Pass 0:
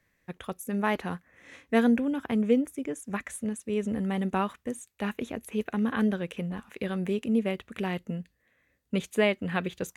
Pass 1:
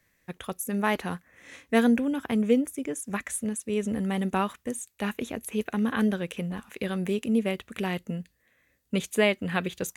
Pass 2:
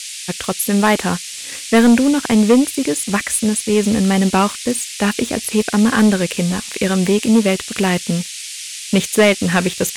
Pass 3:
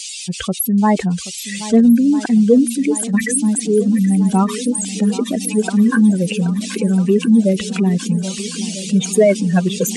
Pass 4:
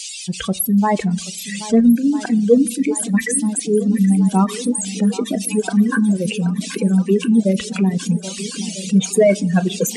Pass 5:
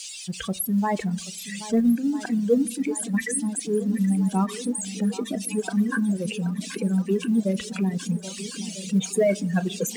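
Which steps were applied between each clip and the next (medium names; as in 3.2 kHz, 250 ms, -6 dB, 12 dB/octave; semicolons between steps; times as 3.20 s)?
treble shelf 4.3 kHz +8 dB; trim +1 dB
waveshaping leveller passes 2; band noise 2.2–10 kHz -36 dBFS; trim +6 dB
spectral contrast enhancement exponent 2.7; on a send: shuffle delay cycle 1297 ms, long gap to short 1.5:1, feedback 63%, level -15 dB; on the sum: trim +1 dB
on a send at -10 dB: reverberation RT60 0.90 s, pre-delay 6 ms; on the sum: reverb removal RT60 0.62 s; trim -1 dB
companding laws mixed up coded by mu; peaking EQ 1.7 kHz +3.5 dB 0.21 oct; trim -8 dB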